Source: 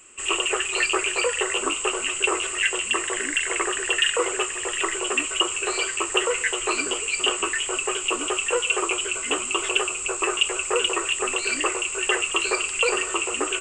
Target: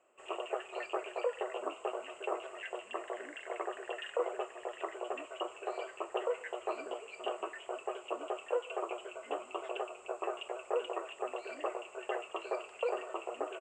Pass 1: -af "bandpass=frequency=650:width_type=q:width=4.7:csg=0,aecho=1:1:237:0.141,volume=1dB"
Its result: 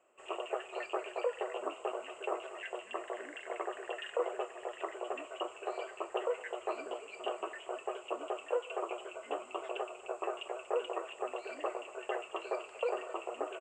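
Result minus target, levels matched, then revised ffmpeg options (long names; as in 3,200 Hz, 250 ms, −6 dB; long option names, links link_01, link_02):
echo-to-direct +11 dB
-af "bandpass=frequency=650:width_type=q:width=4.7:csg=0,aecho=1:1:237:0.0398,volume=1dB"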